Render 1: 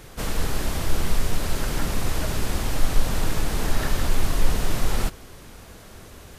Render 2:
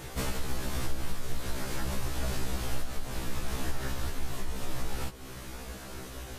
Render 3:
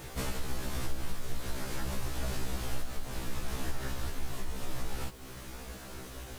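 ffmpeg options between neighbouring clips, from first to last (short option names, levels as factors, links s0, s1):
-af "acompressor=threshold=0.0316:ratio=4,afftfilt=real='re*1.73*eq(mod(b,3),0)':imag='im*1.73*eq(mod(b,3),0)':win_size=2048:overlap=0.75,volume=1.68"
-af "acrusher=bits=8:mix=0:aa=0.000001,volume=0.75"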